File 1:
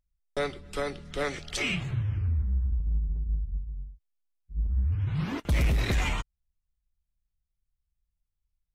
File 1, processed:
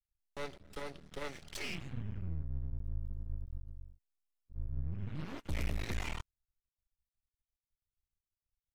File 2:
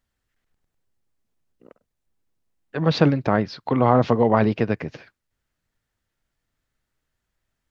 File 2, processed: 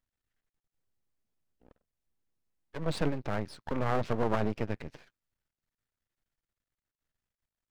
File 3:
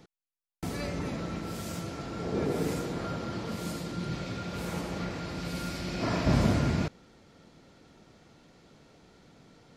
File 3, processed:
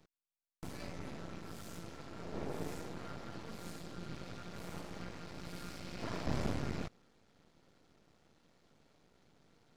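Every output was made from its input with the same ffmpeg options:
ffmpeg -i in.wav -af "aeval=exprs='max(val(0),0)':channel_layout=same,volume=-7.5dB" out.wav

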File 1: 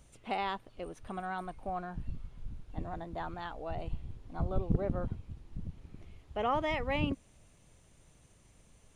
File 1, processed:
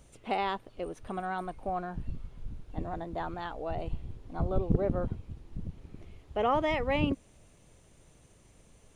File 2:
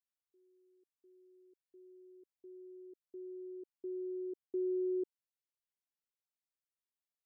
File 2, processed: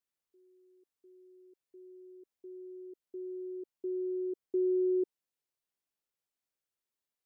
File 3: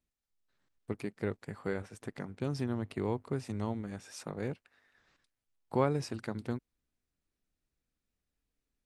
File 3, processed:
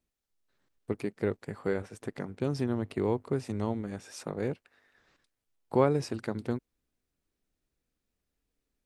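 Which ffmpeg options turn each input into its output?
ffmpeg -i in.wav -af "equalizer=frequency=420:width=1:gain=4,volume=2dB" out.wav

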